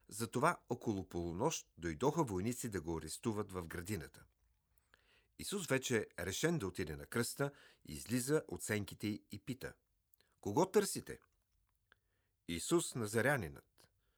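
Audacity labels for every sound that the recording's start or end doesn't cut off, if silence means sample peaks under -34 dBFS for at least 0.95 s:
5.480000	11.100000	sound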